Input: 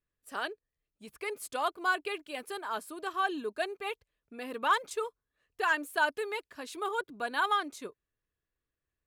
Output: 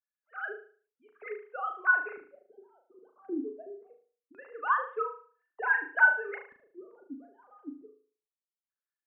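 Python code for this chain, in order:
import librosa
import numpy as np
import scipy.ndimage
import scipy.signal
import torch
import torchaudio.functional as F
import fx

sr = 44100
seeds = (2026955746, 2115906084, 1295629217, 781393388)

y = fx.sine_speech(x, sr)
y = fx.filter_lfo_lowpass(y, sr, shape='square', hz=0.23, low_hz=260.0, high_hz=1500.0, q=3.4)
y = fx.room_flutter(y, sr, wall_m=6.4, rt60_s=0.43)
y = y * librosa.db_to_amplitude(-6.5)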